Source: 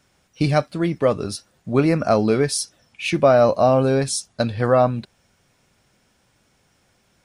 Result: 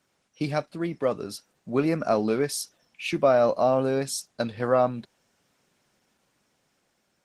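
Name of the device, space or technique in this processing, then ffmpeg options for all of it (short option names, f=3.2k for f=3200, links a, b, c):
video call: -af "highpass=170,dynaudnorm=f=300:g=9:m=5.5dB,volume=-7dB" -ar 48000 -c:a libopus -b:a 16k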